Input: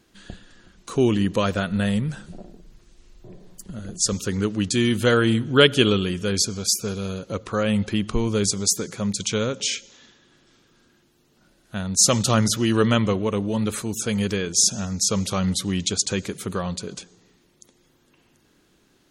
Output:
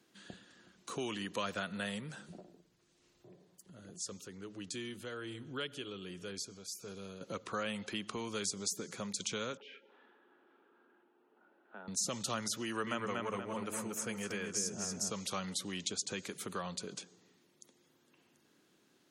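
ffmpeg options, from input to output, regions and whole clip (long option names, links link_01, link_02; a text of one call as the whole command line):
ffmpeg -i in.wav -filter_complex "[0:a]asettb=1/sr,asplit=3[link_01][link_02][link_03];[link_01]atrim=end=2.404[link_04];[link_02]atrim=start=2.4:end=7.21,asetpts=PTS-STARTPTS,afade=type=in:duration=0.004:curve=qsin,afade=type=out:start_time=4.806:duration=0.004:curve=qsin,bandreject=frequency=220:width=5.9,acompressor=threshold=-46dB:ratio=1.5:attack=3.2:release=140:knee=1:detection=peak,tremolo=f=1.3:d=0.44[link_05];[link_03]atrim=start=7.206[link_06];[link_04][link_05]acrossfade=duration=0.004:curve1=hsin:curve2=qsin[link_07];[link_07][link_06]acrossfade=duration=0.004:curve1=qsin:curve2=hsin,asettb=1/sr,asplit=3[link_08][link_09][link_10];[link_08]atrim=end=9.574[link_11];[link_09]atrim=start=9.57:end=11.88,asetpts=PTS-STARTPTS,afade=type=in:duration=0.004:curve=qsin,afade=type=out:start_time=2.306:duration=0.004:curve=qsin,highpass=frequency=250:width=0.5412,highpass=frequency=250:width=1.3066,equalizer=frequency=410:width_type=q:width=4:gain=7,equalizer=frequency=850:width_type=q:width=4:gain=10,equalizer=frequency=1400:width_type=q:width=4:gain=6,equalizer=frequency=2100:width_type=q:width=4:gain=-6,lowpass=frequency=2400:width=0.5412,lowpass=frequency=2400:width=1.3066,acompressor=threshold=-56dB:ratio=1.5:attack=3.2:release=140:knee=1:detection=peak[link_12];[link_10]atrim=start=11.876[link_13];[link_11][link_12]acrossfade=duration=0.004:curve1=hsin:curve2=qsin[link_14];[link_14][link_13]acrossfade=duration=0.004:curve1=qsin:curve2=hsin,asettb=1/sr,asplit=3[link_15][link_16][link_17];[link_15]atrim=end=12.634[link_18];[link_16]atrim=start=12.63:end=15.1,asetpts=PTS-STARTPTS,afade=type=in:duration=0.004:curve=qsin,afade=type=out:start_time=2.466:duration=0.004:curve=qsin,equalizer=frequency=3800:width_type=o:width=0.58:gain=-13.5,asplit=2[link_19][link_20];[link_20]adelay=236,lowpass=frequency=3400:poles=1,volume=-4dB,asplit=2[link_21][link_22];[link_22]adelay=236,lowpass=frequency=3400:poles=1,volume=0.38,asplit=2[link_23][link_24];[link_24]adelay=236,lowpass=frequency=3400:poles=1,volume=0.38,asplit=2[link_25][link_26];[link_26]adelay=236,lowpass=frequency=3400:poles=1,volume=0.38,asplit=2[link_27][link_28];[link_28]adelay=236,lowpass=frequency=3400:poles=1,volume=0.38[link_29];[link_19][link_21][link_23][link_25][link_27][link_29]amix=inputs=6:normalize=0,atrim=end_sample=108927[link_30];[link_17]atrim=start=15.096[link_31];[link_18][link_30]acrossfade=duration=0.004:curve1=hsin:curve2=qsin[link_32];[link_32][link_31]acrossfade=duration=0.004:curve1=qsin:curve2=hsin,highpass=160,acrossover=split=330|710[link_33][link_34][link_35];[link_33]acompressor=threshold=-37dB:ratio=4[link_36];[link_34]acompressor=threshold=-39dB:ratio=4[link_37];[link_35]acompressor=threshold=-27dB:ratio=4[link_38];[link_36][link_37][link_38]amix=inputs=3:normalize=0,volume=-8dB" out.wav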